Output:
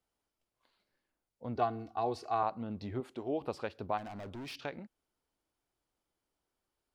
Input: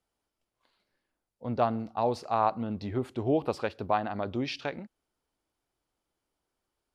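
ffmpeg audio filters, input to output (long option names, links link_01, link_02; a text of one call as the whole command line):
ffmpeg -i in.wav -filter_complex "[0:a]asettb=1/sr,asplit=3[link_01][link_02][link_03];[link_01]atrim=end=1.554[link_04];[link_02]atrim=start=1.55:end=2.43,asetpts=PTS-STARTPTS,afade=type=in:duration=0.004:curve=qsin,afade=type=out:start_time=0.876:duration=0.004:curve=qsin,aecho=1:1:2.7:0.84,atrim=end_sample=38808[link_05];[link_03]atrim=start=2.426[link_06];[link_04][link_05]acrossfade=duration=0.004:curve1=hsin:curve2=qsin[link_07];[link_07][link_06]acrossfade=duration=0.004:curve1=qsin:curve2=hsin,asettb=1/sr,asplit=3[link_08][link_09][link_10];[link_08]atrim=end=3.004[link_11];[link_09]atrim=start=3:end=3.41,asetpts=PTS-STARTPTS,afade=type=in:duration=0.004:curve=qsin,afade=type=out:start_time=0.406:duration=0.004:curve=qsin,equalizer=frequency=100:width_type=o:width=1.3:gain=-14.5[link_12];[link_10]atrim=start=3.406[link_13];[link_11][link_12]acrossfade=duration=0.004:curve1=hsin:curve2=qsin[link_14];[link_14][link_13]acrossfade=duration=0.004:curve1=qsin:curve2=hsin,asplit=2[link_15][link_16];[link_16]acompressor=threshold=-38dB:ratio=6,volume=0dB[link_17];[link_15][link_17]amix=inputs=2:normalize=0,asplit=3[link_18][link_19][link_20];[link_18]afade=type=out:start_time=3.97:duration=0.02[link_21];[link_19]volume=32.5dB,asoftclip=hard,volume=-32.5dB,afade=type=in:start_time=3.97:duration=0.02,afade=type=out:start_time=4.55:duration=0.02[link_22];[link_20]afade=type=in:start_time=4.55:duration=0.02[link_23];[link_21][link_22][link_23]amix=inputs=3:normalize=0,volume=-9dB" out.wav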